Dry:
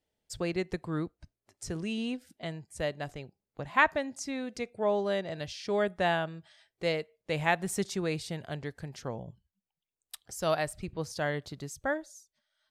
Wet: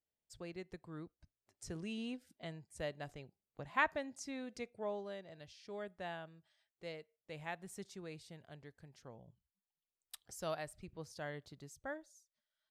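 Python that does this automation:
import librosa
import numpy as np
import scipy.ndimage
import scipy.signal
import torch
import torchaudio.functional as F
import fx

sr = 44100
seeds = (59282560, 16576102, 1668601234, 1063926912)

y = fx.gain(x, sr, db=fx.line((0.97, -15.5), (1.66, -9.0), (4.64, -9.0), (5.18, -17.0), (9.18, -17.0), (10.2, -6.0), (10.57, -13.0)))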